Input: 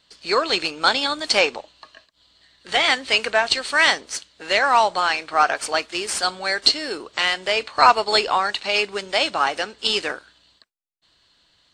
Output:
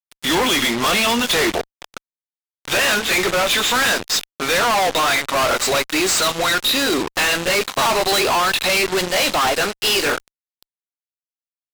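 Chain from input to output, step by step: gliding pitch shift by -4.5 st ending unshifted; fuzz box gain 42 dB, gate -39 dBFS; gain -2.5 dB

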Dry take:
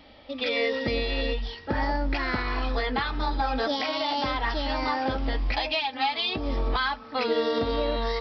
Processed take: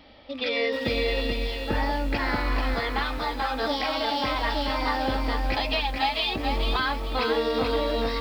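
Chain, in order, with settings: rattling part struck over -41 dBFS, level -36 dBFS; 2.74–3.62 low shelf 200 Hz -12 dB; lo-fi delay 0.437 s, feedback 35%, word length 8-bit, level -4.5 dB

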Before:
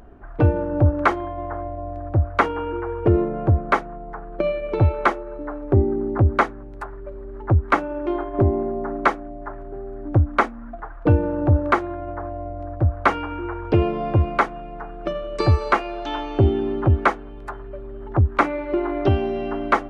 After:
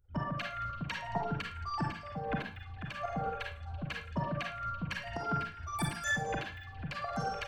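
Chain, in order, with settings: per-bin expansion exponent 2; compressor 6:1, threshold -32 dBFS, peak gain reduction 17 dB; transient shaper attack -11 dB, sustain +2 dB; tremolo saw up 1.6 Hz, depth 70%; pitch shift -5 st; delay with a stepping band-pass 0.296 s, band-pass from 3700 Hz, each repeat -0.7 oct, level -10.5 dB; digital reverb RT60 0.83 s, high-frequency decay 0.65×, pre-delay 70 ms, DRR 0.5 dB; wide varispeed 2.66×; gain +4.5 dB

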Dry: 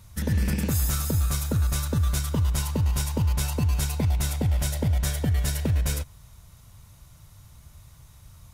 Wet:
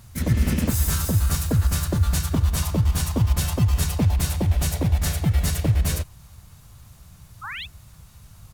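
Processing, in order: painted sound rise, 7.43–7.66, 1000–3700 Hz -36 dBFS; harmoniser -5 st -6 dB, +3 st -1 dB

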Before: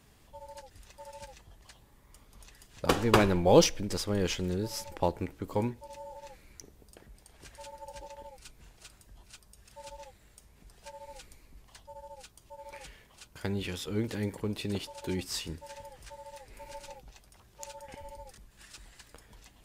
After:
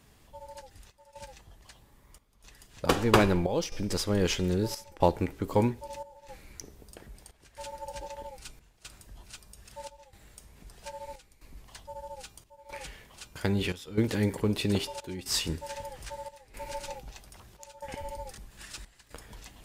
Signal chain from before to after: de-hum 400.2 Hz, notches 35; in parallel at 0 dB: vocal rider 2 s; on the sum: step gate "xxxxxxx..x" 117 bpm -12 dB; gain -2.5 dB

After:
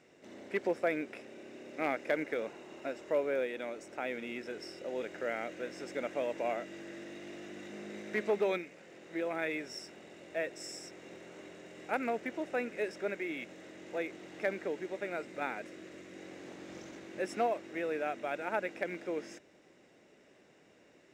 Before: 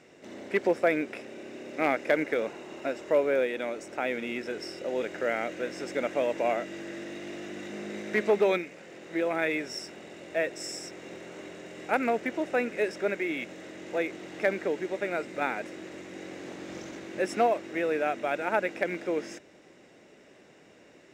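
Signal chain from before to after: 15.59–16.18 bell 850 Hz -8 dB 0.25 oct; gain -7 dB

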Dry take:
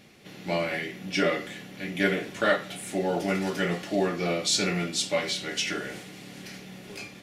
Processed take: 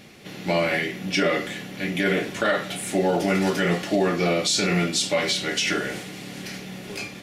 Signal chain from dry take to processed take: limiter -19.5 dBFS, peak gain reduction 8 dB; gain +7 dB

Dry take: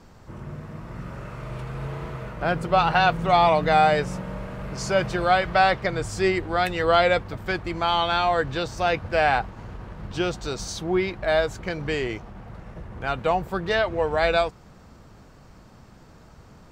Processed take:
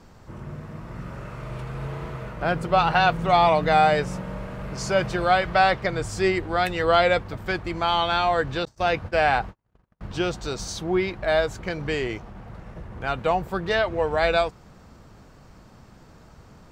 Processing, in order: 8.65–10.01 gate -32 dBFS, range -44 dB

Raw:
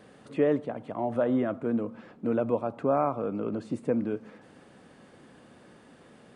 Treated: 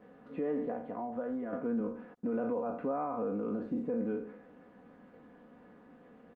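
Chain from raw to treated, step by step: spectral trails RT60 0.53 s; LPF 1800 Hz 12 dB/oct; 2.14–2.68 gate -48 dBFS, range -55 dB; HPF 48 Hz 6 dB/oct; 3.32–3.87 notch 870 Hz, Q 18; comb 4.1 ms, depth 67%; 0.76–1.53 compressor 3:1, threshold -31 dBFS, peak gain reduction 10 dB; limiter -20.5 dBFS, peak gain reduction 9.5 dB; gain -5.5 dB; Opus 32 kbps 48000 Hz

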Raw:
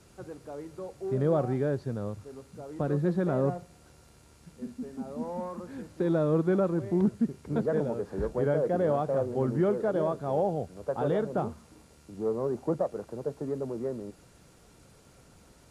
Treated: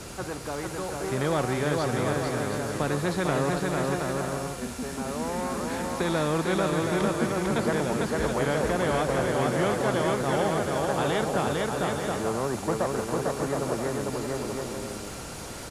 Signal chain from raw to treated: bouncing-ball echo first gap 0.45 s, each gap 0.6×, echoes 5; spectral compressor 2:1

